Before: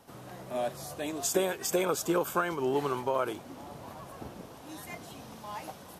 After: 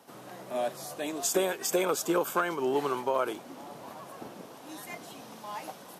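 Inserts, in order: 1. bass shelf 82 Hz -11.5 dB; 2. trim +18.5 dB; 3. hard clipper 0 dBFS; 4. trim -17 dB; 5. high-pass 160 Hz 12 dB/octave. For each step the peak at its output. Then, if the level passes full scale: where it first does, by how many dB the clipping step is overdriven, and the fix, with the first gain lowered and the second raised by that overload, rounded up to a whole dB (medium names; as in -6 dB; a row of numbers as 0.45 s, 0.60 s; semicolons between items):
-15.0 dBFS, +3.5 dBFS, 0.0 dBFS, -17.0 dBFS, -14.5 dBFS; step 2, 3.5 dB; step 2 +14.5 dB, step 4 -13 dB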